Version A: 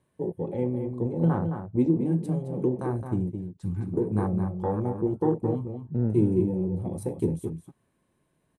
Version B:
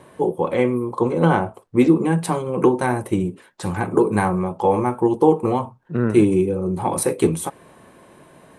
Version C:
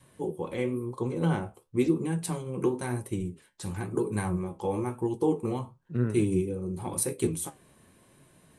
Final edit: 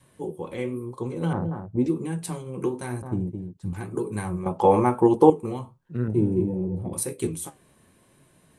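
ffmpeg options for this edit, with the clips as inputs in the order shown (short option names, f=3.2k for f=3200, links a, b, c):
-filter_complex "[0:a]asplit=3[a][b][c];[2:a]asplit=5[d][e][f][g][h];[d]atrim=end=1.332[i];[a]atrim=start=1.328:end=1.862[j];[e]atrim=start=1.858:end=3.022[k];[b]atrim=start=3.018:end=3.732[l];[f]atrim=start=3.728:end=4.462[m];[1:a]atrim=start=4.458:end=5.302[n];[g]atrim=start=5.298:end=6.082[o];[c]atrim=start=6.078:end=6.932[p];[h]atrim=start=6.928[q];[i][j]acrossfade=d=0.004:c1=hsin:c2=hsin[r];[r][k]acrossfade=d=0.004:c1=hsin:c2=hsin[s];[s][l]acrossfade=d=0.004:c1=hsin:c2=hsin[t];[t][m]acrossfade=d=0.004:c1=hsin:c2=hsin[u];[u][n]acrossfade=d=0.004:c1=hsin:c2=hsin[v];[v][o]acrossfade=d=0.004:c1=hsin:c2=hsin[w];[w][p]acrossfade=d=0.004:c1=hsin:c2=hsin[x];[x][q]acrossfade=d=0.004:c1=hsin:c2=hsin"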